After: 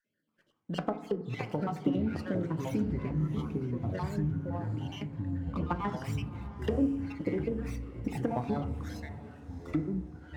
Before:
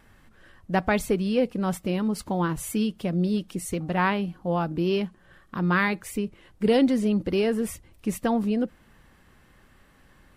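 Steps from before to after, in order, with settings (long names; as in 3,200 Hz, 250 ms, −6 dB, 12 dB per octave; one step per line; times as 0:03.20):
time-frequency cells dropped at random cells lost 50%
high-pass filter 150 Hz 24 dB per octave
treble cut that deepens with the level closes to 530 Hz, closed at −21 dBFS
noise gate −57 dBFS, range −23 dB
downward compressor, threshold −28 dBFS, peak gain reduction 11 dB
0:02.85–0:05.56: transistor ladder low-pass 3,100 Hz, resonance 35%
delay with pitch and tempo change per echo 292 ms, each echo −6 semitones, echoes 3
feedback delay with all-pass diffusion 703 ms, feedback 43%, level −16 dB
feedback delay network reverb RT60 0.79 s, low-frequency decay 1.5×, high-frequency decay 0.3×, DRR 8.5 dB
windowed peak hold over 3 samples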